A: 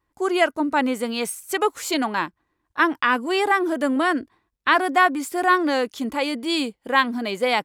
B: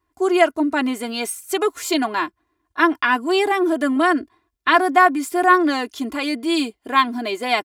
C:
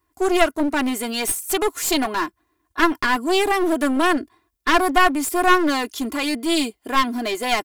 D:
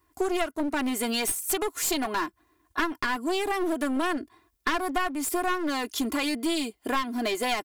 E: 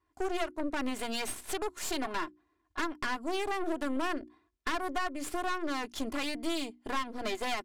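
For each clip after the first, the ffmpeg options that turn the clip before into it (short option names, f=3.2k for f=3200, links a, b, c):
-af "highpass=47,aecho=1:1:2.9:0.77"
-af "highshelf=f=7.6k:g=10.5,aeval=exprs='clip(val(0),-1,0.0708)':c=same,volume=1dB"
-af "acompressor=threshold=-28dB:ratio=4,volume=2.5dB"
-af "aeval=exprs='0.251*(cos(1*acos(clip(val(0)/0.251,-1,1)))-cos(1*PI/2))+0.0316*(cos(8*acos(clip(val(0)/0.251,-1,1)))-cos(8*PI/2))':c=same,bandreject=f=60:t=h:w=6,bandreject=f=120:t=h:w=6,bandreject=f=180:t=h:w=6,bandreject=f=240:t=h:w=6,bandreject=f=300:t=h:w=6,bandreject=f=360:t=h:w=6,adynamicsmooth=sensitivity=6.5:basefreq=5.8k,volume=-8dB"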